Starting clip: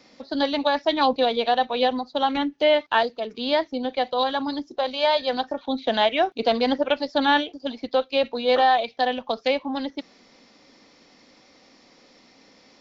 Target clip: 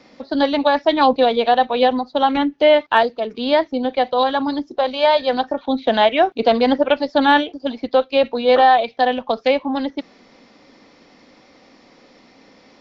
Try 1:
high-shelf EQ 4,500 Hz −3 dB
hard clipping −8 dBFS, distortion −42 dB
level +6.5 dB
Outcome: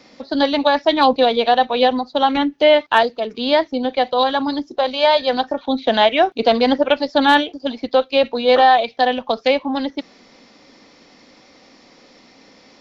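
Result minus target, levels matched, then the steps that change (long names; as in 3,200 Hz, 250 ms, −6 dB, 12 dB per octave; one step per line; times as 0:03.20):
8,000 Hz band +7.0 dB
change: high-shelf EQ 4,500 Hz −12 dB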